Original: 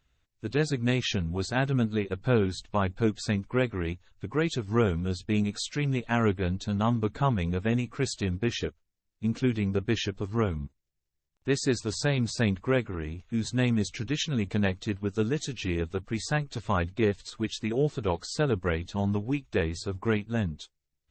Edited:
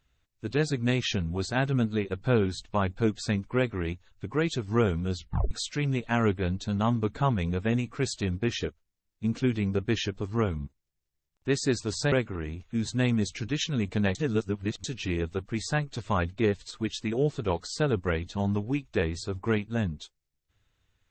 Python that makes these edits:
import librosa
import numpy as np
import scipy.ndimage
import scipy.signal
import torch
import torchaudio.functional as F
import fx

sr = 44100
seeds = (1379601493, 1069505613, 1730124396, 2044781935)

y = fx.edit(x, sr, fx.tape_stop(start_s=5.16, length_s=0.35),
    fx.cut(start_s=12.12, length_s=0.59),
    fx.reverse_span(start_s=14.74, length_s=0.69), tone=tone)